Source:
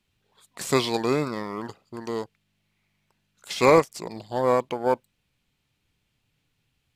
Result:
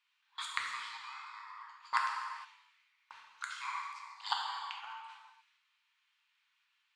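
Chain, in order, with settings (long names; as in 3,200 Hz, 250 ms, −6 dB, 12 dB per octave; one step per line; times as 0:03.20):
Butterworth high-pass 920 Hz 72 dB per octave
noise gate with hold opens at −53 dBFS
high-shelf EQ 4,600 Hz −5.5 dB
in parallel at +3 dB: downward compressor, threshold −34 dBFS, peak gain reduction 14.5 dB
on the sum: gate with flip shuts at −28 dBFS, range −34 dB
soft clipping −21.5 dBFS, distortion −31 dB
high-frequency loss of the air 95 metres
reverb whose tail is shaped and stops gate 490 ms falling, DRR −1.5 dB
level +13.5 dB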